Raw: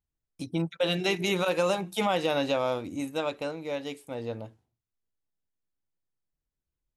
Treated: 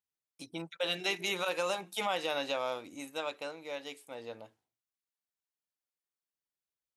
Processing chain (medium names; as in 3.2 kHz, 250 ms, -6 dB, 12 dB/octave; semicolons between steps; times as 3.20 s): high-pass 840 Hz 6 dB/octave; trim -2.5 dB